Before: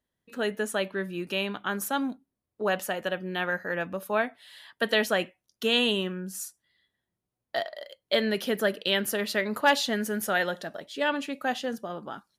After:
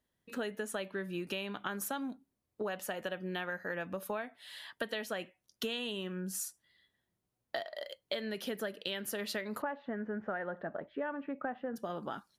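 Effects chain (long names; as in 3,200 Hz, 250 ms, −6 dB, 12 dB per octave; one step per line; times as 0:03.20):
0:09.62–0:11.76: low-pass filter 1,700 Hz 24 dB per octave
downward compressor 12 to 1, threshold −35 dBFS, peak gain reduction 18 dB
level +1 dB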